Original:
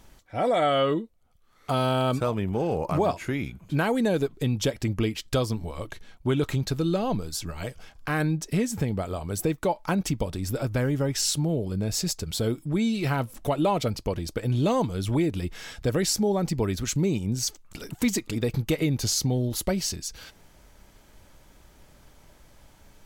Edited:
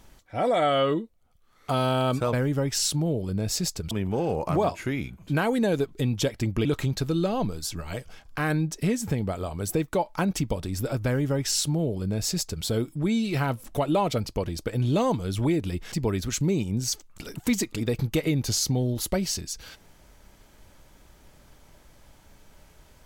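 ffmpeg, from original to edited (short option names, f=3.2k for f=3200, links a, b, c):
-filter_complex "[0:a]asplit=5[a][b][c][d][e];[a]atrim=end=2.332[f];[b]atrim=start=10.758:end=12.342[g];[c]atrim=start=2.328:end=5.072[h];[d]atrim=start=6.348:end=15.622[i];[e]atrim=start=16.468[j];[f][g]acrossfade=d=0.004:c1=hsin:c2=hsin[k];[k][h]acrossfade=d=0.004:c1=hsin:c2=hsin[l];[l][i]acrossfade=d=0.004:c1=hsin:c2=hsin[m];[m][j]acrossfade=d=0.004:c1=hsin:c2=hsin"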